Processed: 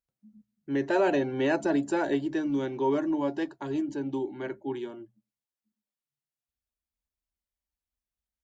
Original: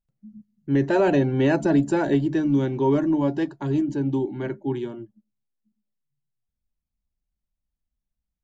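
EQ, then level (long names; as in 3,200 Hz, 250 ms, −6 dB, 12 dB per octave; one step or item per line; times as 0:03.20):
high-pass filter 56 Hz
parametric band 150 Hz −13 dB 1.4 octaves
mains-hum notches 60/120 Hz
−2.5 dB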